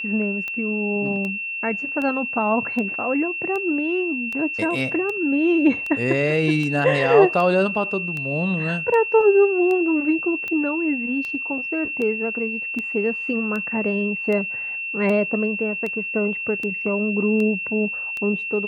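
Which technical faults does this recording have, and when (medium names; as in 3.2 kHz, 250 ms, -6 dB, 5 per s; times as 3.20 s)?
tick 78 rpm -17 dBFS
whine 2.7 kHz -26 dBFS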